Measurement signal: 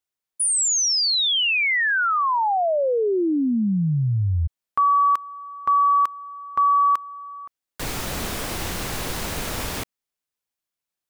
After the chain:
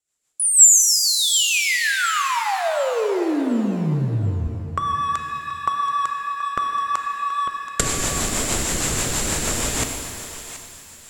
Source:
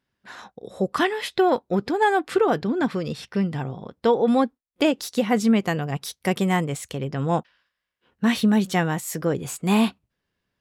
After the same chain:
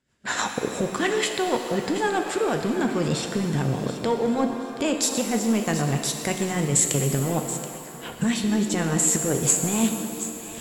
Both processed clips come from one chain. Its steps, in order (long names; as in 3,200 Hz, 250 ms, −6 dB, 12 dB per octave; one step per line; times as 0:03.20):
camcorder AGC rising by 43 dB per second, up to +35 dB
in parallel at −4 dB: dead-zone distortion −20.5 dBFS
on the sum: rotating-speaker cabinet horn 6.3 Hz
reversed playback
downward compressor, threshold −25 dBFS
reversed playback
low-pass filter 12,000 Hz 24 dB per octave
parametric band 7,400 Hz +15 dB 0.3 octaves
feedback echo with a high-pass in the loop 728 ms, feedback 28%, high-pass 940 Hz, level −12 dB
reverb with rising layers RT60 2.4 s, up +7 semitones, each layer −8 dB, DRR 5 dB
level +3.5 dB